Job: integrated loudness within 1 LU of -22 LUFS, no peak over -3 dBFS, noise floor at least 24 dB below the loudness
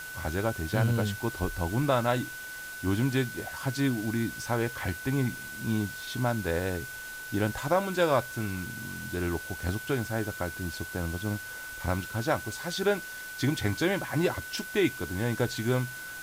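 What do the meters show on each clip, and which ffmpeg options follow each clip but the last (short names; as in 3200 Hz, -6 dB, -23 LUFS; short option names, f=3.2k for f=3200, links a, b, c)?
steady tone 1500 Hz; tone level -39 dBFS; noise floor -41 dBFS; noise floor target -55 dBFS; loudness -30.5 LUFS; peak -12.0 dBFS; loudness target -22.0 LUFS
-> -af "bandreject=f=1.5k:w=30"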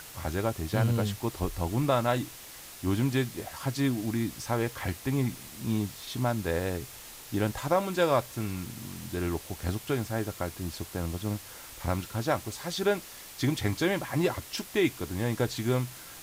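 steady tone none; noise floor -46 dBFS; noise floor target -55 dBFS
-> -af "afftdn=nr=9:nf=-46"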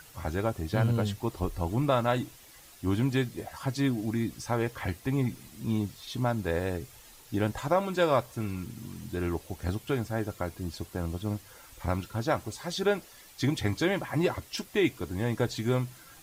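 noise floor -53 dBFS; noise floor target -55 dBFS
-> -af "afftdn=nr=6:nf=-53"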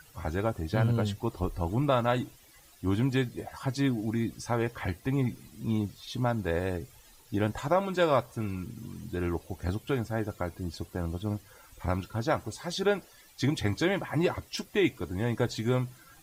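noise floor -57 dBFS; loudness -31.0 LUFS; peak -12.5 dBFS; loudness target -22.0 LUFS
-> -af "volume=9dB"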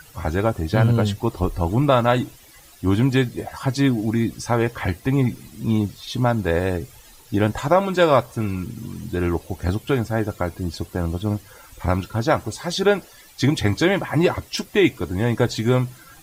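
loudness -22.0 LUFS; peak -3.5 dBFS; noise floor -48 dBFS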